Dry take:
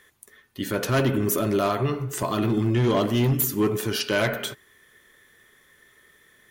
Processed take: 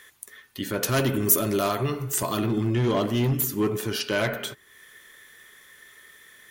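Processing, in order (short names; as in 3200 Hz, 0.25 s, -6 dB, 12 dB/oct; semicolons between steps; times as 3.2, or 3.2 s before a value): 0.83–2.42 high shelf 5000 Hz +11.5 dB; mismatched tape noise reduction encoder only; gain -2 dB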